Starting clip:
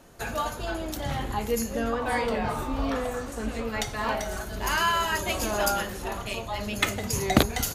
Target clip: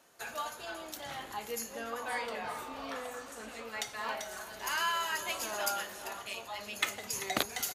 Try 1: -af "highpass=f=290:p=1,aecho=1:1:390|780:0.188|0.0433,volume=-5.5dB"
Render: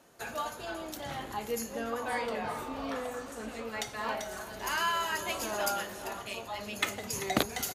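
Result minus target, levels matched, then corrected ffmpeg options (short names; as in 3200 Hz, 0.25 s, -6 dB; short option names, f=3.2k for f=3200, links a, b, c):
250 Hz band +6.0 dB
-af "highpass=f=960:p=1,aecho=1:1:390|780:0.188|0.0433,volume=-5.5dB"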